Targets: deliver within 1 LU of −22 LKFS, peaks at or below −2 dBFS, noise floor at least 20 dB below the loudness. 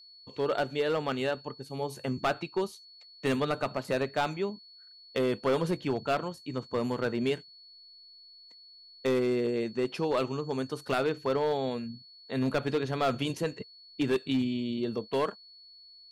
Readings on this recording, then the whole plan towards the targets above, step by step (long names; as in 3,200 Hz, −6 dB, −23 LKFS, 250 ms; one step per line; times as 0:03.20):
share of clipped samples 1.2%; peaks flattened at −21.5 dBFS; interfering tone 4,400 Hz; level of the tone −51 dBFS; integrated loudness −31.0 LKFS; sample peak −21.5 dBFS; target loudness −22.0 LKFS
→ clipped peaks rebuilt −21.5 dBFS
notch filter 4,400 Hz, Q 30
level +9 dB